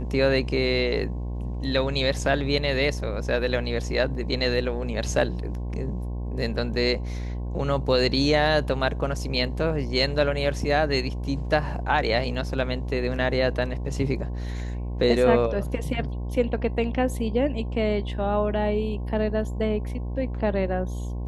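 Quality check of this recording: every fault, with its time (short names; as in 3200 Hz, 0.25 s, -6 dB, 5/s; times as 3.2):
buzz 60 Hz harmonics 18 -30 dBFS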